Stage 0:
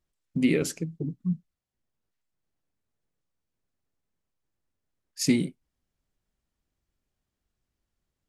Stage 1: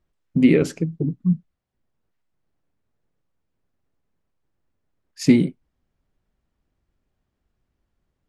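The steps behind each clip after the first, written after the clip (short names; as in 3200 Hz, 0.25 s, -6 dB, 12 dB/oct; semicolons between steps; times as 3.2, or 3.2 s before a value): LPF 1700 Hz 6 dB/oct; gain +8.5 dB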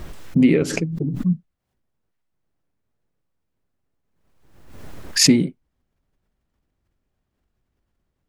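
backwards sustainer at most 50 dB/s; gain -1 dB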